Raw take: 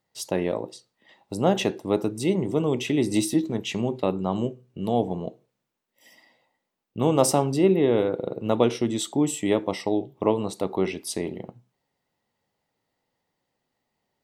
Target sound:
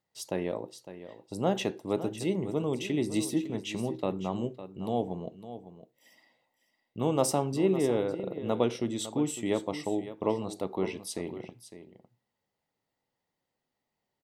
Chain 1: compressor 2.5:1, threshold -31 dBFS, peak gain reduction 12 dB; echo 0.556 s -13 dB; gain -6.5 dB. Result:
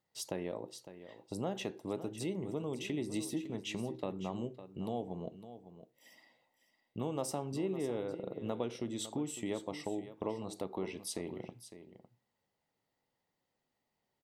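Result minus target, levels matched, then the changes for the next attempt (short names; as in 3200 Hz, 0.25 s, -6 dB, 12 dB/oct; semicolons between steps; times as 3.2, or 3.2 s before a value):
compressor: peak gain reduction +12 dB
remove: compressor 2.5:1, threshold -31 dBFS, peak gain reduction 12 dB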